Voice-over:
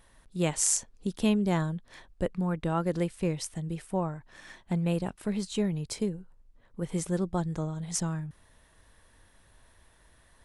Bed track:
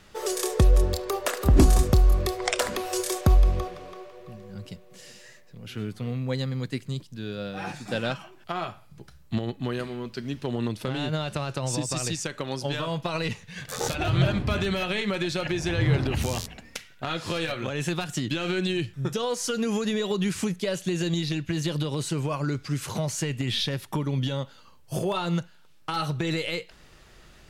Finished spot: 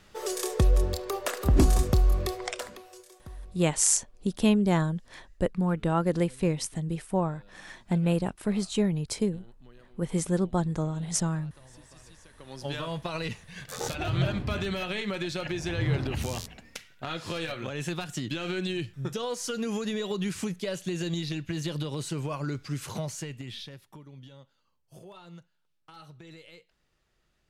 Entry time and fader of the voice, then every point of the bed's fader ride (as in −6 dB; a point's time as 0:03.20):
3.20 s, +3.0 dB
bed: 0:02.34 −3.5 dB
0:03.10 −25.5 dB
0:12.25 −25.5 dB
0:12.68 −4.5 dB
0:22.98 −4.5 dB
0:24.05 −21 dB